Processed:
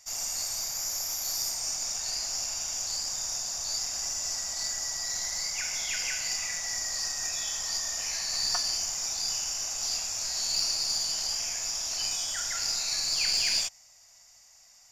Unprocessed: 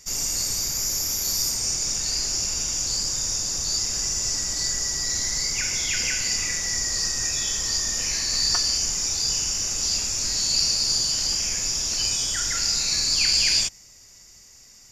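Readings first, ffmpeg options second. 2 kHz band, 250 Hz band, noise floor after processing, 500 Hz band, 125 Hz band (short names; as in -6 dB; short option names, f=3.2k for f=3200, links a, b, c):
-6.0 dB, -14.5 dB, -57 dBFS, -6.0 dB, -15.5 dB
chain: -af "lowshelf=f=510:t=q:w=3:g=-10,aeval=exprs='0.422*(cos(1*acos(clip(val(0)/0.422,-1,1)))-cos(1*PI/2))+0.015*(cos(6*acos(clip(val(0)/0.422,-1,1)))-cos(6*PI/2))+0.00266*(cos(7*acos(clip(val(0)/0.422,-1,1)))-cos(7*PI/2))':c=same,volume=-6.5dB"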